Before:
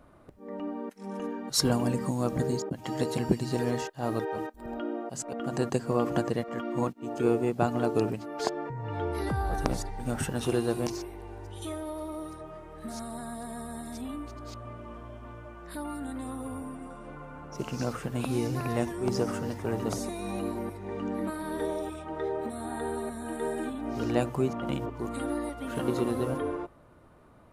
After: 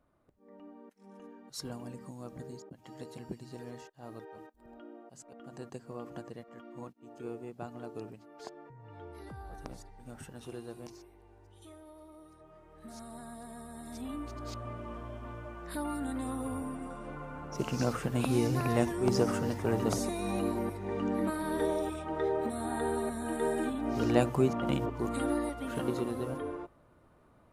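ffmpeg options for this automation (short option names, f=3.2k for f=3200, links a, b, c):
-af "volume=1dB,afade=t=in:st=12.27:d=0.89:silence=0.375837,afade=t=in:st=13.74:d=0.73:silence=0.375837,afade=t=out:st=25.31:d=0.77:silence=0.446684"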